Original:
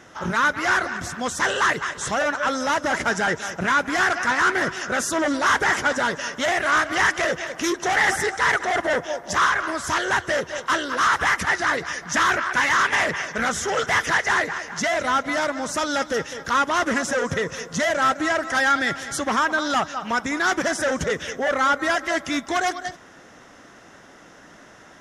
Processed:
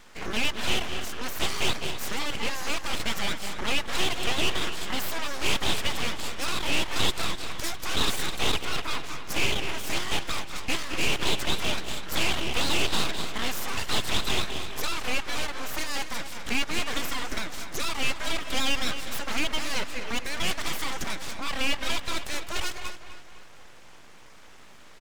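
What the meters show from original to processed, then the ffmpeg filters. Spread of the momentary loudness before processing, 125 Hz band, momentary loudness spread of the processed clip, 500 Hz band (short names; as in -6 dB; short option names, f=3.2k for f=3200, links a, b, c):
6 LU, -0.5 dB, 7 LU, -10.5 dB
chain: -filter_complex "[0:a]acrossover=split=210|930|3100[a][b][c][d];[b]acompressor=threshold=-34dB:ratio=6[e];[a][e][c][d]amix=inputs=4:normalize=0,aeval=exprs='abs(val(0))':c=same,asplit=2[f][g];[g]adelay=253,lowpass=f=4.9k:p=1,volume=-11dB,asplit=2[h][i];[i]adelay=253,lowpass=f=4.9k:p=1,volume=0.48,asplit=2[j][k];[k]adelay=253,lowpass=f=4.9k:p=1,volume=0.48,asplit=2[l][m];[m]adelay=253,lowpass=f=4.9k:p=1,volume=0.48,asplit=2[n][o];[o]adelay=253,lowpass=f=4.9k:p=1,volume=0.48[p];[f][h][j][l][n][p]amix=inputs=6:normalize=0,volume=-2dB"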